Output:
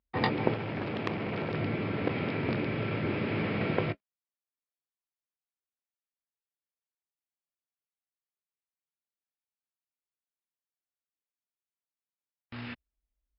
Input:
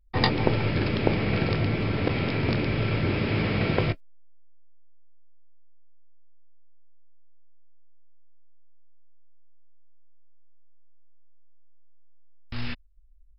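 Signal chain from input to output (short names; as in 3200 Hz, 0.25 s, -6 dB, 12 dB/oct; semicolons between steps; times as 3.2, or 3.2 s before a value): BPF 140–2800 Hz; 0.54–1.54 core saturation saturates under 2300 Hz; gain -3.5 dB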